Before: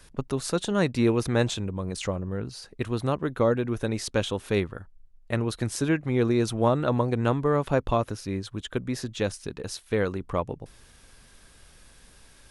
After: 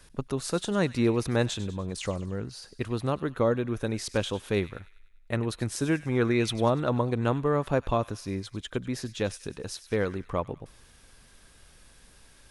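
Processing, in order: 6.11–6.68 bell 1000 Hz -> 5800 Hz +10.5 dB 0.71 oct; thin delay 98 ms, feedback 52%, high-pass 1800 Hz, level -14.5 dB; gain -2 dB

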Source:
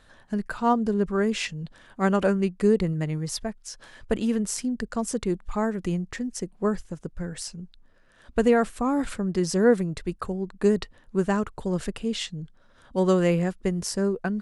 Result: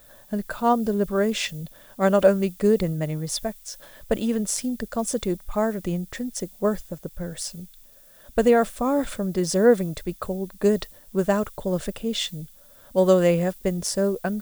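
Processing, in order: high shelf 5300 Hz +6 dB; added noise violet -46 dBFS; small resonant body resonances 590/3500 Hz, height 10 dB, ringing for 25 ms; mismatched tape noise reduction decoder only

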